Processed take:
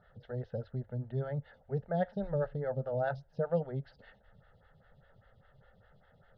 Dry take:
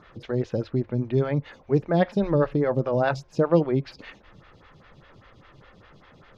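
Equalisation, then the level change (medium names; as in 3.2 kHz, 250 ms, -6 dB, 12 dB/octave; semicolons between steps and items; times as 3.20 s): treble shelf 2.5 kHz -8.5 dB; treble shelf 5 kHz -11.5 dB; static phaser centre 1.6 kHz, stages 8; -7.5 dB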